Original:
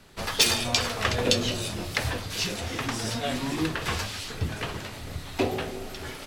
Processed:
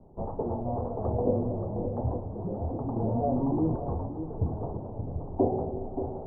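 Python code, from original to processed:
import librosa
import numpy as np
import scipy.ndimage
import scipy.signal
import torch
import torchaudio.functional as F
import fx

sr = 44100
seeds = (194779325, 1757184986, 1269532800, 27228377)

p1 = scipy.signal.sosfilt(scipy.signal.butter(8, 880.0, 'lowpass', fs=sr, output='sos'), x)
p2 = fx.rider(p1, sr, range_db=3, speed_s=2.0)
p3 = p2 + fx.echo_single(p2, sr, ms=577, db=-8.5, dry=0)
y = fx.env_flatten(p3, sr, amount_pct=50, at=(2.96, 3.76))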